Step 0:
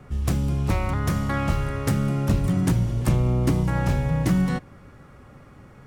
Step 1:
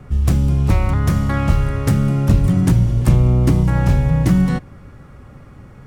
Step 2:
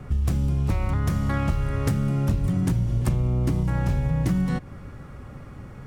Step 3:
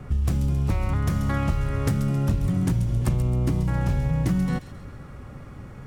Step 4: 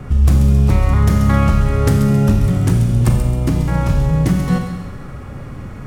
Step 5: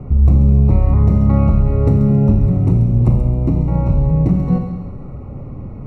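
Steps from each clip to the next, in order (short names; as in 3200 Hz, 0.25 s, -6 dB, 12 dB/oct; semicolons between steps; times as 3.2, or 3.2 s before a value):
low shelf 170 Hz +7.5 dB; gain +3 dB
compressor 4:1, threshold -21 dBFS, peak gain reduction 12 dB
thin delay 0.134 s, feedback 45%, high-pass 2700 Hz, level -8.5 dB
Schroeder reverb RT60 1.1 s, combs from 30 ms, DRR 4 dB; gain +8 dB
running mean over 27 samples; gain +1 dB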